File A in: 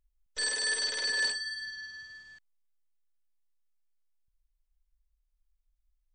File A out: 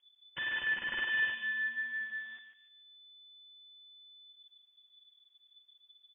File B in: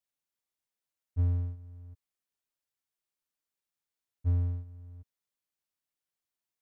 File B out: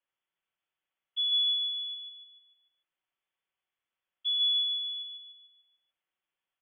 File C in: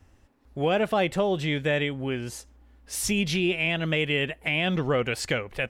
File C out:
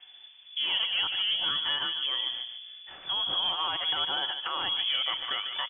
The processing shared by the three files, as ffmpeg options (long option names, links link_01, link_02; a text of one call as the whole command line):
ffmpeg -i in.wav -filter_complex "[0:a]aecho=1:1:5.1:0.32,asplit=2[link_01][link_02];[link_02]acompressor=threshold=-35dB:ratio=6,volume=-1dB[link_03];[link_01][link_03]amix=inputs=2:normalize=0,alimiter=limit=-18.5dB:level=0:latency=1:release=319,asoftclip=type=tanh:threshold=-24.5dB,asplit=2[link_04][link_05];[link_05]adelay=147,lowpass=frequency=1200:poles=1,volume=-4dB,asplit=2[link_06][link_07];[link_07]adelay=147,lowpass=frequency=1200:poles=1,volume=0.47,asplit=2[link_08][link_09];[link_09]adelay=147,lowpass=frequency=1200:poles=1,volume=0.47,asplit=2[link_10][link_11];[link_11]adelay=147,lowpass=frequency=1200:poles=1,volume=0.47,asplit=2[link_12][link_13];[link_13]adelay=147,lowpass=frequency=1200:poles=1,volume=0.47,asplit=2[link_14][link_15];[link_15]adelay=147,lowpass=frequency=1200:poles=1,volume=0.47[link_16];[link_06][link_08][link_10][link_12][link_14][link_16]amix=inputs=6:normalize=0[link_17];[link_04][link_17]amix=inputs=2:normalize=0,lowpass=frequency=3000:width_type=q:width=0.5098,lowpass=frequency=3000:width_type=q:width=0.6013,lowpass=frequency=3000:width_type=q:width=0.9,lowpass=frequency=3000:width_type=q:width=2.563,afreqshift=-3500" out.wav